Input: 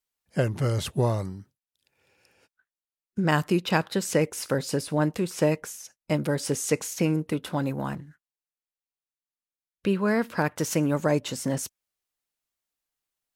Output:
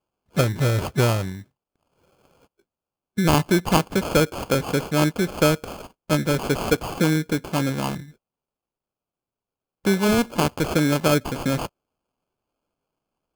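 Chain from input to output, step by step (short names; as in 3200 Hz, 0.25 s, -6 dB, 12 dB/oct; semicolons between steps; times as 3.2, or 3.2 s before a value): sample-rate reducer 1900 Hz, jitter 0%; gain +4.5 dB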